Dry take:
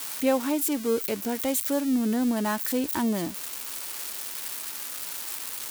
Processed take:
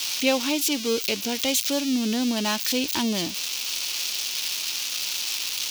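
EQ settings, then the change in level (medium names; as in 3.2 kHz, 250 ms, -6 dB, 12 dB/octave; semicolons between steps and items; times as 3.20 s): high-order bell 3.9 kHz +14.5 dB; 0.0 dB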